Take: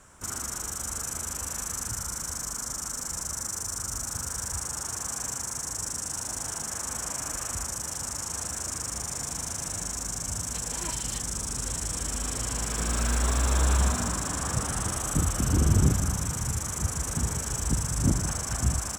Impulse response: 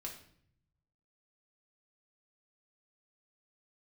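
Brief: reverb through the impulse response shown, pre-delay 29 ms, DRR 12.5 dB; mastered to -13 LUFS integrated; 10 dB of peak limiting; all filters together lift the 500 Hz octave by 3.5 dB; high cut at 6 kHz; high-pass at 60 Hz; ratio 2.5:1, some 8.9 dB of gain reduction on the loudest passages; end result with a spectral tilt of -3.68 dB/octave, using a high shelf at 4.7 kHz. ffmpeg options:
-filter_complex "[0:a]highpass=60,lowpass=6000,equalizer=f=500:t=o:g=4.5,highshelf=f=4700:g=-5,acompressor=threshold=0.0282:ratio=2.5,alimiter=level_in=1.68:limit=0.0631:level=0:latency=1,volume=0.596,asplit=2[s0][s1];[1:a]atrim=start_sample=2205,adelay=29[s2];[s1][s2]afir=irnorm=-1:irlink=0,volume=0.316[s3];[s0][s3]amix=inputs=2:normalize=0,volume=17.8"

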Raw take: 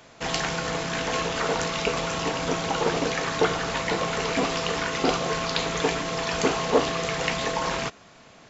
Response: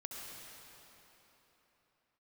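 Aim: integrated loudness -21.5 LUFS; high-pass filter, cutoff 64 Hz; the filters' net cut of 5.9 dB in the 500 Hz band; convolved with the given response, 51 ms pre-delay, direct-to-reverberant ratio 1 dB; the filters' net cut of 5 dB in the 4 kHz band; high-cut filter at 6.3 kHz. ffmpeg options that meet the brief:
-filter_complex "[0:a]highpass=64,lowpass=6300,equalizer=f=500:t=o:g=-7.5,equalizer=f=4000:t=o:g=-6,asplit=2[s0][s1];[1:a]atrim=start_sample=2205,adelay=51[s2];[s1][s2]afir=irnorm=-1:irlink=0,volume=1.06[s3];[s0][s3]amix=inputs=2:normalize=0,volume=1.78"

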